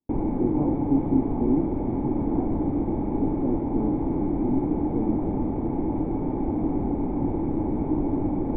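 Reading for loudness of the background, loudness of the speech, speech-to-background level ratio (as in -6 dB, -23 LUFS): -26.5 LUFS, -30.0 LUFS, -3.5 dB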